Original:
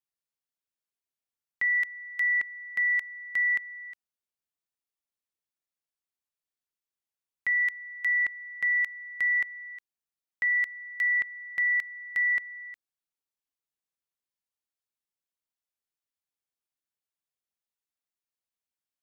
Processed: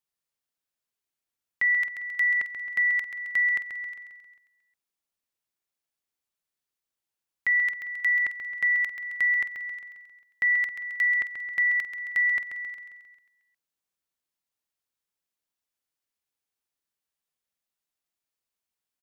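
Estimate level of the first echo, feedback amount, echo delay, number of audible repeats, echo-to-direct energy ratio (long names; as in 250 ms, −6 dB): −8.0 dB, 54%, 134 ms, 6, −6.5 dB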